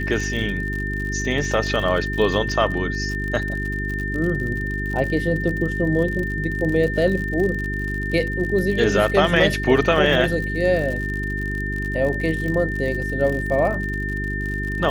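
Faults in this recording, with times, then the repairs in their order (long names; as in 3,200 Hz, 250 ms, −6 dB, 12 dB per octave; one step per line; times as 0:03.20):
surface crackle 60 per second −27 dBFS
mains hum 50 Hz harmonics 8 −27 dBFS
whistle 1,800 Hz −27 dBFS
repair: click removal
notch filter 1,800 Hz, Q 30
hum removal 50 Hz, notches 8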